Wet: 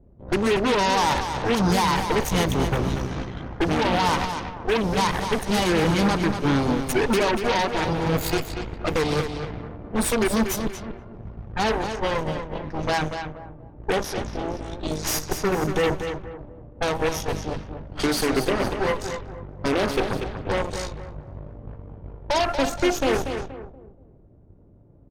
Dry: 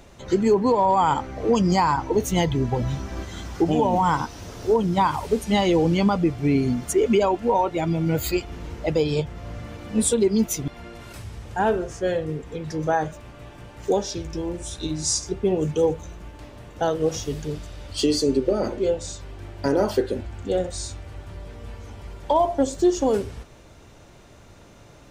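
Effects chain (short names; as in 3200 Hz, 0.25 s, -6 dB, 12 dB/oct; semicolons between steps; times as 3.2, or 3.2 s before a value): added harmonics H 8 -9 dB, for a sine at -10.5 dBFS; low shelf 150 Hz +3.5 dB; notch 7400 Hz, Q 11; on a send: feedback echo 0.238 s, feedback 38%, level -8 dB; on the sum: low-pass opened by the level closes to 340 Hz, open at -17 dBFS; gain -4.5 dB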